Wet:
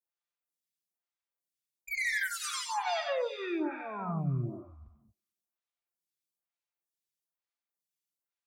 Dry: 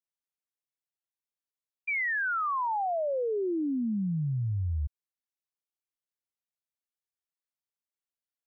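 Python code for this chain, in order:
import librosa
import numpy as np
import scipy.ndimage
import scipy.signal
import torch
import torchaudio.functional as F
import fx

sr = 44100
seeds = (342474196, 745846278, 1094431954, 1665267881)

y = x + 0.7 * np.pad(x, (int(5.8 * sr / 1000.0), 0))[:len(x)]
y = fx.cheby_harmonics(y, sr, harmonics=(3, 4, 7), levels_db=(-20, -14, -10), full_scale_db=-21.5)
y = scipy.signal.sosfilt(scipy.signal.butter(2, 59.0, 'highpass', fs=sr, output='sos'), y)
y = fx.echo_wet_highpass(y, sr, ms=93, feedback_pct=57, hz=1600.0, wet_db=-4.5)
y = fx.rev_gated(y, sr, seeds[0], gate_ms=250, shape='flat', drr_db=5.5)
y = fx.stagger_phaser(y, sr, hz=1.1)
y = F.gain(torch.from_numpy(y), -4.5).numpy()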